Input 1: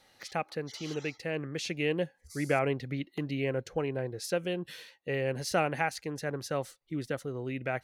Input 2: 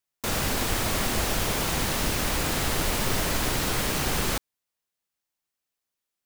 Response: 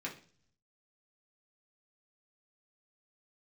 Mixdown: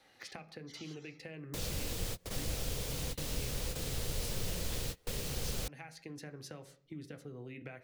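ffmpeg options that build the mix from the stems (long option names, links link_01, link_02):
-filter_complex "[0:a]acompressor=threshold=-38dB:ratio=6,volume=-3.5dB,asplit=3[link_01][link_02][link_03];[link_02]volume=-4dB[link_04];[1:a]equalizer=frequency=490:width=2.5:gain=13.5,adelay=1300,volume=-7.5dB[link_05];[link_03]apad=whole_len=333190[link_06];[link_05][link_06]sidechaingate=range=-33dB:threshold=-56dB:ratio=16:detection=peak[link_07];[2:a]atrim=start_sample=2205[link_08];[link_04][link_08]afir=irnorm=-1:irlink=0[link_09];[link_01][link_07][link_09]amix=inputs=3:normalize=0,highshelf=frequency=4200:gain=-5,acrossover=split=170|3000[link_10][link_11][link_12];[link_11]acompressor=threshold=-46dB:ratio=6[link_13];[link_10][link_13][link_12]amix=inputs=3:normalize=0"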